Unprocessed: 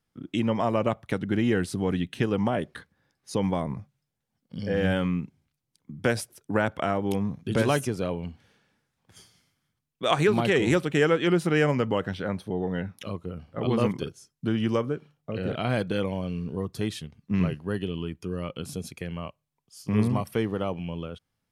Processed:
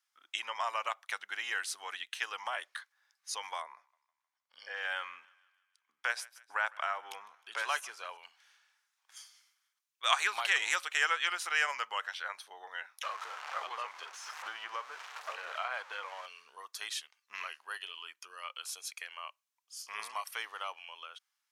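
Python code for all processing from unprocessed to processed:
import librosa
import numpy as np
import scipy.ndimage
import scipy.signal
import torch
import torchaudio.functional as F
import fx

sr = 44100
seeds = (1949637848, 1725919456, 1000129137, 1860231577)

y = fx.chain(x, sr, fx.high_shelf(hz=3800.0, db=-11.0),
    fx.echo_thinned(ms=155, feedback_pct=55, hz=690.0, wet_db=-22), at=(3.62, 8.17))
y = fx.chain(y, sr, fx.zero_step(step_db=-33.5),
    fx.bandpass_q(hz=680.0, q=0.55),
    fx.band_squash(depth_pct=100), at=(13.03, 16.26))
y = scipy.signal.sosfilt(scipy.signal.butter(4, 1000.0, 'highpass', fs=sr, output='sos'), y)
y = fx.peak_eq(y, sr, hz=6200.0, db=4.5, octaves=0.57)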